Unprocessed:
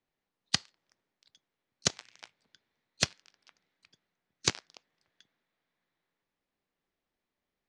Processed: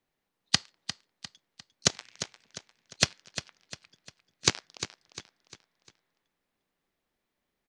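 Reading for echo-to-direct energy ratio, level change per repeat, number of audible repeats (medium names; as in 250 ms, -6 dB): -10.5 dB, -7.5 dB, 4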